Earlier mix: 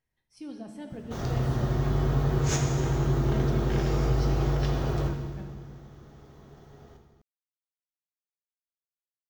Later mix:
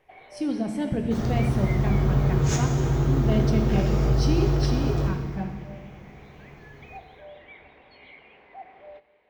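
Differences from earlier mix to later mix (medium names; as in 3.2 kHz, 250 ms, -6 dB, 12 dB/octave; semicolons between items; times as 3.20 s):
speech +11.0 dB; first sound: unmuted; master: add bass shelf 350 Hz +4 dB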